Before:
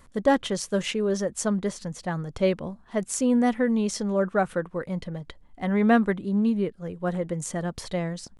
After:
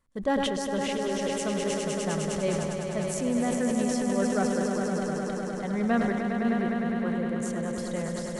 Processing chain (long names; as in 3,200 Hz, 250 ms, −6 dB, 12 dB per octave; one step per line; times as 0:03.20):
noise gate −49 dBFS, range −14 dB
echo that builds up and dies away 102 ms, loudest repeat 5, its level −7.5 dB
level that may fall only so fast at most 26 dB per second
level −7 dB